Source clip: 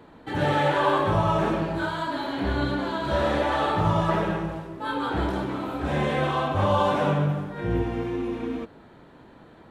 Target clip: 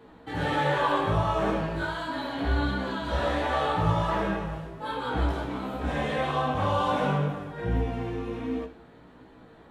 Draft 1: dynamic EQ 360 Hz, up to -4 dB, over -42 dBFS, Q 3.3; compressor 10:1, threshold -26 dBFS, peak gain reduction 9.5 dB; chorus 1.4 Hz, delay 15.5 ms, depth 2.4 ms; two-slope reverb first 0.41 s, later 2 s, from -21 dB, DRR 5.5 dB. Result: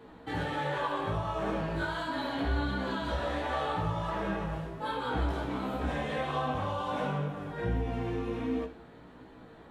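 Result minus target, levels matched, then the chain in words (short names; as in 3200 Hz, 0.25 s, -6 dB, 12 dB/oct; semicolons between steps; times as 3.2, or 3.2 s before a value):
compressor: peak gain reduction +9.5 dB
dynamic EQ 360 Hz, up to -4 dB, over -42 dBFS, Q 3.3; chorus 1.4 Hz, delay 15.5 ms, depth 2.4 ms; two-slope reverb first 0.41 s, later 2 s, from -21 dB, DRR 5.5 dB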